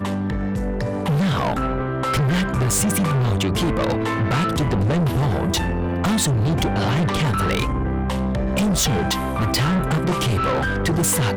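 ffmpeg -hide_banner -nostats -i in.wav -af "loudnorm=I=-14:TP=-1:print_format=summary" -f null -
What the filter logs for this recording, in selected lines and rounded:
Input Integrated:    -20.6 LUFS
Input True Peak:     -12.8 dBTP
Input LRA:             0.8 LU
Input Threshold:     -30.6 LUFS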